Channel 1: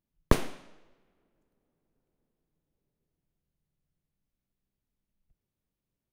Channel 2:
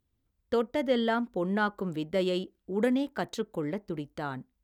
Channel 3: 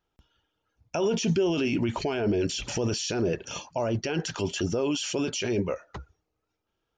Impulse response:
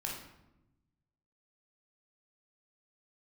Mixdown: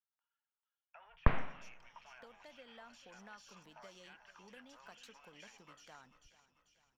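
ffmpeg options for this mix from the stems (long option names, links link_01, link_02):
-filter_complex "[0:a]adelay=950,volume=2.5dB[link_01];[1:a]highpass=250,acompressor=threshold=-34dB:ratio=6,adelay=1700,volume=-14.5dB,asplit=2[link_02][link_03];[link_03]volume=-17dB[link_04];[2:a]aeval=exprs='(tanh(10*val(0)+0.35)-tanh(0.35))/10':channel_layout=same,highpass=frequency=810:width=0.5412,highpass=frequency=810:width=1.3066,volume=-17dB,asplit=2[link_05][link_06];[link_06]volume=-12dB[link_07];[link_01][link_05]amix=inputs=2:normalize=0,lowpass=frequency=2300:width=0.5412,lowpass=frequency=2300:width=1.3066,alimiter=limit=-11.5dB:level=0:latency=1:release=86,volume=0dB[link_08];[link_04][link_07]amix=inputs=2:normalize=0,aecho=0:1:442|884|1326|1768|2210|2652|3094:1|0.49|0.24|0.118|0.0576|0.0282|0.0138[link_09];[link_02][link_08][link_09]amix=inputs=3:normalize=0,equalizer=frequency=350:width=1.2:gain=-14"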